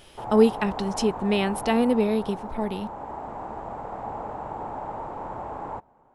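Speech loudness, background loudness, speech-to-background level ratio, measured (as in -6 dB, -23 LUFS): -24.0 LUFS, -35.5 LUFS, 11.5 dB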